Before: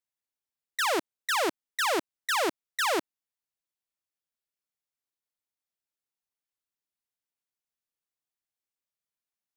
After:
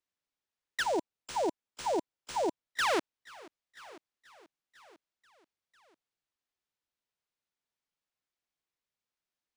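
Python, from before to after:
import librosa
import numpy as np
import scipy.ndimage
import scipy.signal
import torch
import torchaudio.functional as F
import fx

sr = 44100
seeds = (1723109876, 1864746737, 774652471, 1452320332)

y = fx.echo_feedback(x, sr, ms=983, feedback_pct=42, wet_db=-22.5)
y = fx.spec_erase(y, sr, start_s=0.83, length_s=1.87, low_hz=1000.0, high_hz=7300.0)
y = np.interp(np.arange(len(y)), np.arange(len(y))[::3], y[::3])
y = F.gain(torch.from_numpy(y), -1.5).numpy()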